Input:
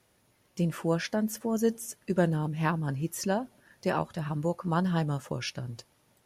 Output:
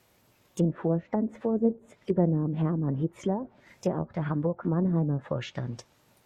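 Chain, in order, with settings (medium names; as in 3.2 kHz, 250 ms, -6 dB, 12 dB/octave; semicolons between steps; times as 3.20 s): formant shift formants +3 st; low-pass that closes with the level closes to 460 Hz, closed at -25.5 dBFS; trim +3.5 dB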